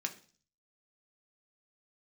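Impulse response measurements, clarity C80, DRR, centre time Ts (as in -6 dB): 18.5 dB, 3.0 dB, 8 ms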